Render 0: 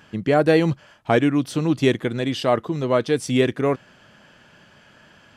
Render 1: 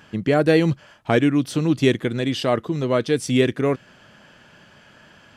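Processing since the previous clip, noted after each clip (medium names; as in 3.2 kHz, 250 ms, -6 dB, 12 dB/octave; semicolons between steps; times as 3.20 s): dynamic bell 860 Hz, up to -5 dB, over -33 dBFS, Q 1.1; trim +1.5 dB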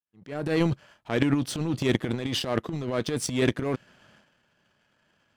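fade-in on the opening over 0.66 s; power-law waveshaper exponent 1.4; transient shaper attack -8 dB, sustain +12 dB; trim -2.5 dB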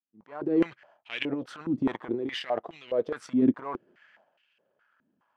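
step-sequenced band-pass 4.8 Hz 260–2700 Hz; trim +6.5 dB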